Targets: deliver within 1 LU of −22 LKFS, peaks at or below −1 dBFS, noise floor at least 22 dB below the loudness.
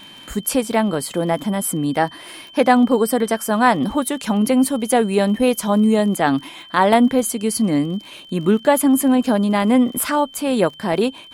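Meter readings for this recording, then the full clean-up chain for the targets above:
crackle rate 40 per second; interfering tone 3,100 Hz; level of the tone −40 dBFS; integrated loudness −18.0 LKFS; sample peak −2.5 dBFS; target loudness −22.0 LKFS
→ click removal
notch filter 3,100 Hz, Q 30
level −4 dB

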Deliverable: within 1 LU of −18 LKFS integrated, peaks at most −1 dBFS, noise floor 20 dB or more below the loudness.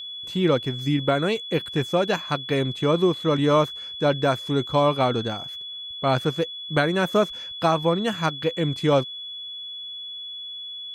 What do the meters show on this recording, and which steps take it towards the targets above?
interfering tone 3,400 Hz; level of the tone −33 dBFS; integrated loudness −24.0 LKFS; sample peak −8.0 dBFS; target loudness −18.0 LKFS
→ notch filter 3,400 Hz, Q 30
level +6 dB

